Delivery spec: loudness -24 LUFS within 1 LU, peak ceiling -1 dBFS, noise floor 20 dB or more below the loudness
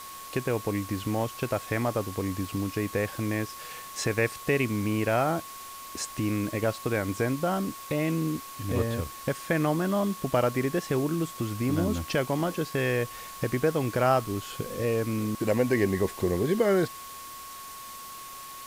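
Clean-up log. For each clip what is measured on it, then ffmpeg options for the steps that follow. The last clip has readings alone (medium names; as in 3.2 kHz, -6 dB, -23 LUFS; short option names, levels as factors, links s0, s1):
steady tone 1.1 kHz; tone level -42 dBFS; noise floor -42 dBFS; noise floor target -49 dBFS; loudness -28.5 LUFS; peak level -11.0 dBFS; loudness target -24.0 LUFS
-> -af "bandreject=f=1100:w=30"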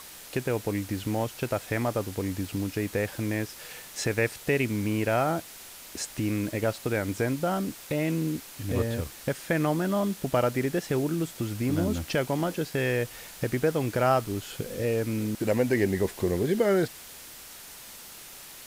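steady tone not found; noise floor -46 dBFS; noise floor target -49 dBFS
-> -af "afftdn=nr=6:nf=-46"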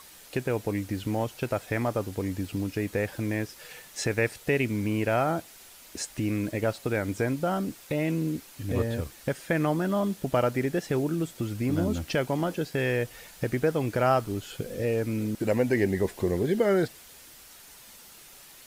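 noise floor -50 dBFS; loudness -28.5 LUFS; peak level -11.0 dBFS; loudness target -24.0 LUFS
-> -af "volume=1.68"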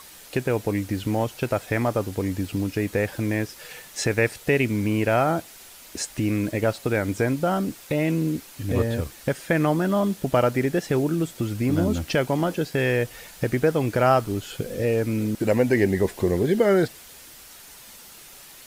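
loudness -24.0 LUFS; peak level -6.5 dBFS; noise floor -46 dBFS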